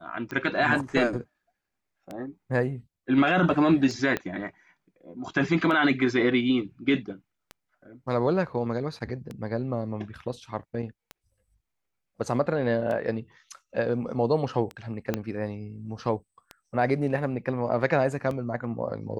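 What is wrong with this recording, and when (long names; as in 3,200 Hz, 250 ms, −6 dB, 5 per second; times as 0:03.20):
scratch tick 33 1/3 rpm −22 dBFS
0:04.17: click −14 dBFS
0:15.14: click −13 dBFS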